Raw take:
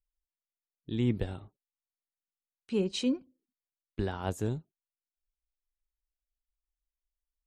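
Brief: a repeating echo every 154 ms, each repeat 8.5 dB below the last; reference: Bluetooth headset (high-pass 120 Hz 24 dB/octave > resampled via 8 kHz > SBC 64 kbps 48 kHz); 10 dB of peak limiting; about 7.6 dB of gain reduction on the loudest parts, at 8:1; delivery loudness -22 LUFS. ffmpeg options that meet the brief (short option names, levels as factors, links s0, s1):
-af "acompressor=threshold=0.0282:ratio=8,alimiter=level_in=2.11:limit=0.0631:level=0:latency=1,volume=0.473,highpass=f=120:w=0.5412,highpass=f=120:w=1.3066,aecho=1:1:154|308|462|616:0.376|0.143|0.0543|0.0206,aresample=8000,aresample=44100,volume=11.2" -ar 48000 -c:a sbc -b:a 64k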